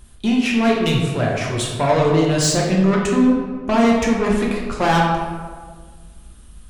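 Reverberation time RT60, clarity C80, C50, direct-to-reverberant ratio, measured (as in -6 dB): 1.6 s, 4.0 dB, 2.0 dB, -2.5 dB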